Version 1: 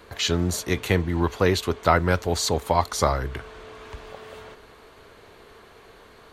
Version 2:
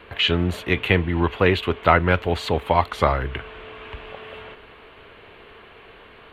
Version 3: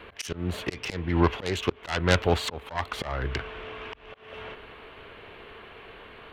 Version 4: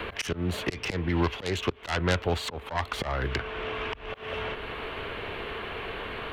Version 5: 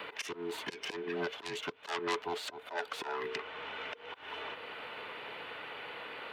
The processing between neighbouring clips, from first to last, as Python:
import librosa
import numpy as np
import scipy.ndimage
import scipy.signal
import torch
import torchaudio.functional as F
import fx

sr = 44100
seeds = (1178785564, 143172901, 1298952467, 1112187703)

y1 = fx.high_shelf_res(x, sr, hz=4100.0, db=-13.0, q=3.0)
y1 = y1 * librosa.db_to_amplitude(2.0)
y2 = fx.self_delay(y1, sr, depth_ms=0.33)
y2 = fx.auto_swell(y2, sr, attack_ms=301.0)
y3 = fx.band_squash(y2, sr, depth_pct=70)
y4 = fx.band_invert(y3, sr, width_hz=500)
y4 = scipy.signal.sosfilt(scipy.signal.butter(2, 350.0, 'highpass', fs=sr, output='sos'), y4)
y4 = y4 * librosa.db_to_amplitude(-7.0)